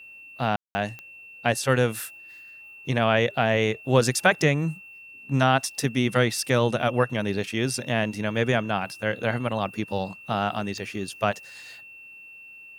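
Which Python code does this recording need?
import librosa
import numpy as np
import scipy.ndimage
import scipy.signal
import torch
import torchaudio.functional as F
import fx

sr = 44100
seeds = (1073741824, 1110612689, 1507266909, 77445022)

y = fx.fix_declick_ar(x, sr, threshold=10.0)
y = fx.notch(y, sr, hz=2700.0, q=30.0)
y = fx.fix_ambience(y, sr, seeds[0], print_start_s=11.81, print_end_s=12.31, start_s=0.56, end_s=0.75)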